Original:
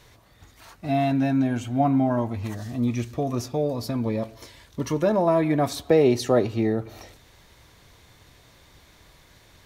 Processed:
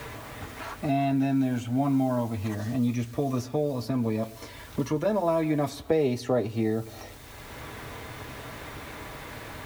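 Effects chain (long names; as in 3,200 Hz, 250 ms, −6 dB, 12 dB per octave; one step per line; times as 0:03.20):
background noise white −54 dBFS
notch comb filter 180 Hz
multiband upward and downward compressor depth 70%
level −2.5 dB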